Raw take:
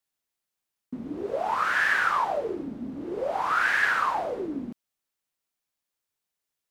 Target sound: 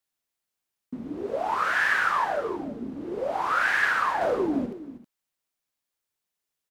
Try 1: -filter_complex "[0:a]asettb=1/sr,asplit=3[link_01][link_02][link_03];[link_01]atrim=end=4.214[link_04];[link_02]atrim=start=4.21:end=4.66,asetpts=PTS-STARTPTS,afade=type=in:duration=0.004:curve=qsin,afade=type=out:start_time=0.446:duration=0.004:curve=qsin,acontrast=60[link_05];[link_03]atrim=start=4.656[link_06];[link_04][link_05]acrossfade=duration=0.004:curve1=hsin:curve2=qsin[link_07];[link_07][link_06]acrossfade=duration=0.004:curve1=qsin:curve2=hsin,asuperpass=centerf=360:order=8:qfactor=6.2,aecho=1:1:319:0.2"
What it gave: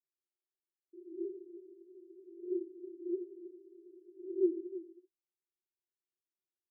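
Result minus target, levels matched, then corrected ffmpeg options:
500 Hz band +5.0 dB
-filter_complex "[0:a]asettb=1/sr,asplit=3[link_01][link_02][link_03];[link_01]atrim=end=4.214[link_04];[link_02]atrim=start=4.21:end=4.66,asetpts=PTS-STARTPTS,afade=type=in:duration=0.004:curve=qsin,afade=type=out:start_time=0.446:duration=0.004:curve=qsin,acontrast=60[link_05];[link_03]atrim=start=4.656[link_06];[link_04][link_05]acrossfade=duration=0.004:curve1=hsin:curve2=qsin[link_07];[link_07][link_06]acrossfade=duration=0.004:curve1=qsin:curve2=hsin,aecho=1:1:319:0.2"

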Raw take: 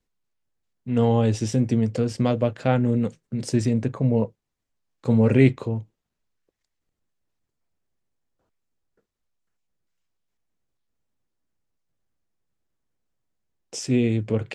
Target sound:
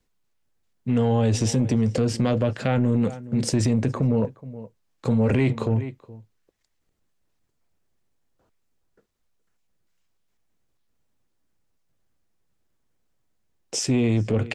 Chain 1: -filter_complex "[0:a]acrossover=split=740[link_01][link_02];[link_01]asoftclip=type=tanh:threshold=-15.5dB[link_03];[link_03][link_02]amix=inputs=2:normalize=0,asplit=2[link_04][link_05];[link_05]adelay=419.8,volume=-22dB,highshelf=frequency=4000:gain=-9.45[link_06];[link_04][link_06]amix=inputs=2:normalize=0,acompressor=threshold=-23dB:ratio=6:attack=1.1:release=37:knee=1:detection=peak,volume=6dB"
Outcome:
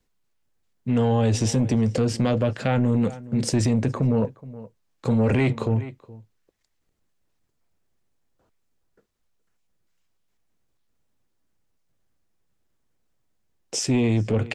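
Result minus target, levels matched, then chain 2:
soft clipping: distortion +8 dB
-filter_complex "[0:a]acrossover=split=740[link_01][link_02];[link_01]asoftclip=type=tanh:threshold=-9dB[link_03];[link_03][link_02]amix=inputs=2:normalize=0,asplit=2[link_04][link_05];[link_05]adelay=419.8,volume=-22dB,highshelf=frequency=4000:gain=-9.45[link_06];[link_04][link_06]amix=inputs=2:normalize=0,acompressor=threshold=-23dB:ratio=6:attack=1.1:release=37:knee=1:detection=peak,volume=6dB"

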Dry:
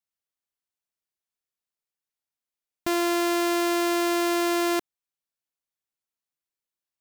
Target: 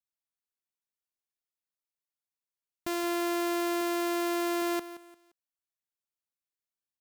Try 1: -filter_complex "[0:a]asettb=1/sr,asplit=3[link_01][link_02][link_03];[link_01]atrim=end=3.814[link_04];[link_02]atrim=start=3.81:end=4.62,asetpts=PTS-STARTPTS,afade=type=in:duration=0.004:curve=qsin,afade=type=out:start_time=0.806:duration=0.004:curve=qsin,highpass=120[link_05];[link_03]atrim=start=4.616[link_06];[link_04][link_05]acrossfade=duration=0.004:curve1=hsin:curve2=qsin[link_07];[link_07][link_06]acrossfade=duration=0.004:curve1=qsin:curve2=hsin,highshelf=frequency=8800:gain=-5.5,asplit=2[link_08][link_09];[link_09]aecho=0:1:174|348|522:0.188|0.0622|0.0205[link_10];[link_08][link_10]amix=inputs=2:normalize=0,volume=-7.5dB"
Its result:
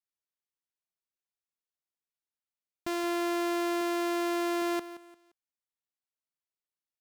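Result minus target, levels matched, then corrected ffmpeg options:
8,000 Hz band −3.0 dB
-filter_complex "[0:a]asettb=1/sr,asplit=3[link_01][link_02][link_03];[link_01]atrim=end=3.814[link_04];[link_02]atrim=start=3.81:end=4.62,asetpts=PTS-STARTPTS,afade=type=in:duration=0.004:curve=qsin,afade=type=out:start_time=0.806:duration=0.004:curve=qsin,highpass=120[link_05];[link_03]atrim=start=4.616[link_06];[link_04][link_05]acrossfade=duration=0.004:curve1=hsin:curve2=qsin[link_07];[link_07][link_06]acrossfade=duration=0.004:curve1=qsin:curve2=hsin,highshelf=frequency=8800:gain=2.5,asplit=2[link_08][link_09];[link_09]aecho=0:1:174|348|522:0.188|0.0622|0.0205[link_10];[link_08][link_10]amix=inputs=2:normalize=0,volume=-7.5dB"

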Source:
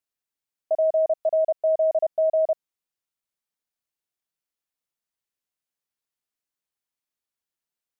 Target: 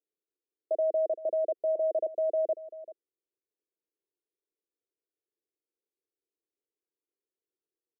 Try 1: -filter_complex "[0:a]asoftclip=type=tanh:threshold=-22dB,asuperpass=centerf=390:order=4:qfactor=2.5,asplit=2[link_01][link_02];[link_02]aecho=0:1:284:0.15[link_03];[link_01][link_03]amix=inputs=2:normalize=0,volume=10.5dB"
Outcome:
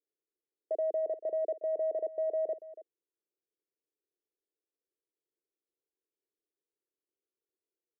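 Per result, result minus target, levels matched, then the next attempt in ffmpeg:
soft clipping: distortion +18 dB; echo 105 ms early
-filter_complex "[0:a]asoftclip=type=tanh:threshold=-10.5dB,asuperpass=centerf=390:order=4:qfactor=2.5,asplit=2[link_01][link_02];[link_02]aecho=0:1:284:0.15[link_03];[link_01][link_03]amix=inputs=2:normalize=0,volume=10.5dB"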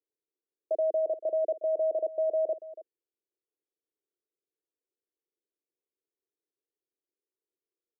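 echo 105 ms early
-filter_complex "[0:a]asoftclip=type=tanh:threshold=-10.5dB,asuperpass=centerf=390:order=4:qfactor=2.5,asplit=2[link_01][link_02];[link_02]aecho=0:1:389:0.15[link_03];[link_01][link_03]amix=inputs=2:normalize=0,volume=10.5dB"

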